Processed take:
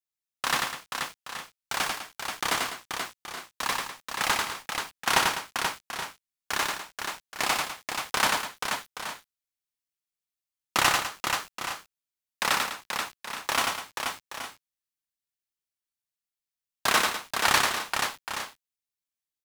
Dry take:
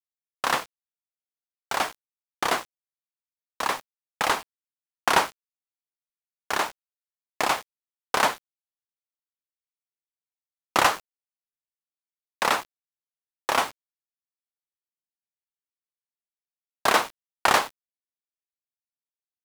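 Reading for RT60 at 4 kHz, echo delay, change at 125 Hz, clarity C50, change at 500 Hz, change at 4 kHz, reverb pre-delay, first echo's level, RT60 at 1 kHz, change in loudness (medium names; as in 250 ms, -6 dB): no reverb, 93 ms, +2.0 dB, no reverb, -5.0 dB, +3.0 dB, no reverb, -3.0 dB, no reverb, -2.5 dB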